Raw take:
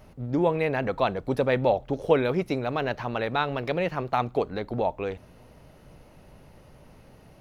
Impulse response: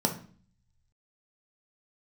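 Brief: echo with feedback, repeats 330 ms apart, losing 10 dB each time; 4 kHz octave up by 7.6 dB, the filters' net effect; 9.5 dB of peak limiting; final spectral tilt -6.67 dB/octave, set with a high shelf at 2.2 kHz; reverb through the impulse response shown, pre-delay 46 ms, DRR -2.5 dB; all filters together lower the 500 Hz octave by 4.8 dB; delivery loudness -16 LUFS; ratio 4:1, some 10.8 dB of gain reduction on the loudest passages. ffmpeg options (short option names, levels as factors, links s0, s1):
-filter_complex "[0:a]equalizer=f=500:t=o:g=-6,highshelf=f=2200:g=3.5,equalizer=f=4000:t=o:g=6,acompressor=threshold=0.0224:ratio=4,alimiter=level_in=1.88:limit=0.0631:level=0:latency=1,volume=0.531,aecho=1:1:330|660|990|1320:0.316|0.101|0.0324|0.0104,asplit=2[s0][s1];[1:a]atrim=start_sample=2205,adelay=46[s2];[s1][s2]afir=irnorm=-1:irlink=0,volume=0.473[s3];[s0][s3]amix=inputs=2:normalize=0,volume=5.62"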